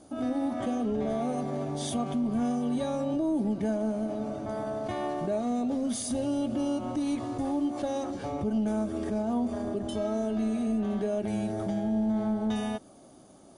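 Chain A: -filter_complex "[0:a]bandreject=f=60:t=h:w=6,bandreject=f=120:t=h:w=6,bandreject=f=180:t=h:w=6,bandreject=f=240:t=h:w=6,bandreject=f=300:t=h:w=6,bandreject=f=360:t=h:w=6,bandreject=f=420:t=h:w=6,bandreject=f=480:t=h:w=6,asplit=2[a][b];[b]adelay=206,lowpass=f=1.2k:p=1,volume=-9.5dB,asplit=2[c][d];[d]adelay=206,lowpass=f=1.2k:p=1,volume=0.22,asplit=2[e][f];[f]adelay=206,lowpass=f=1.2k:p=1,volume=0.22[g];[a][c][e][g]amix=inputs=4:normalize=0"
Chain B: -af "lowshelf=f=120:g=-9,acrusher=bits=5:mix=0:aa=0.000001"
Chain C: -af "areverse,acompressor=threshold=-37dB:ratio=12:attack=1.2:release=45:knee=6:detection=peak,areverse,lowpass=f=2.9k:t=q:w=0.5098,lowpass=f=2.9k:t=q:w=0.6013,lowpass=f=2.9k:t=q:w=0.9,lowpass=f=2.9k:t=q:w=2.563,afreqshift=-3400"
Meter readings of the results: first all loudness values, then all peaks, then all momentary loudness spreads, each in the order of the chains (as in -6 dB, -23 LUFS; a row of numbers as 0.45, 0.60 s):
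-30.0, -31.0, -37.5 LUFS; -18.5, -20.5, -30.0 dBFS; 5, 3, 2 LU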